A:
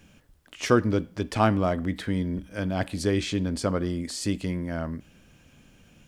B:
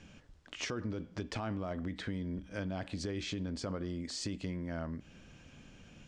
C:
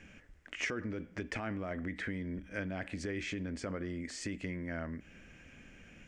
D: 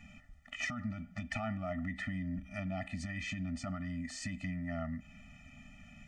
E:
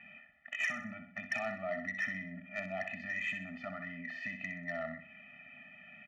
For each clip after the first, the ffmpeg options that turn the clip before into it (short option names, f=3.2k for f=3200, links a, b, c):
-af "lowpass=f=7.1k:w=0.5412,lowpass=f=7.1k:w=1.3066,alimiter=limit=-19dB:level=0:latency=1:release=27,acompressor=threshold=-38dB:ratio=3"
-af "equalizer=f=125:t=o:w=1:g=-6,equalizer=f=1k:t=o:w=1:g=-6,equalizer=f=2k:t=o:w=1:g=11,equalizer=f=4k:t=o:w=1:g=-11,volume=1dB"
-af "afftfilt=real='re*eq(mod(floor(b*sr/1024/290),2),0)':imag='im*eq(mod(floor(b*sr/1024/290),2),0)':win_size=1024:overlap=0.75,volume=2.5dB"
-filter_complex "[0:a]highpass=280,equalizer=f=290:t=q:w=4:g=-7,equalizer=f=430:t=q:w=4:g=3,equalizer=f=650:t=q:w=4:g=4,equalizer=f=1k:t=q:w=4:g=-7,equalizer=f=1.8k:t=q:w=4:g=9,equalizer=f=2.6k:t=q:w=4:g=6,lowpass=f=3k:w=0.5412,lowpass=f=3k:w=1.3066,asoftclip=type=tanh:threshold=-26.5dB,asplit=2[a][b];[b]aecho=0:1:63|126|189|252:0.376|0.147|0.0572|0.0223[c];[a][c]amix=inputs=2:normalize=0"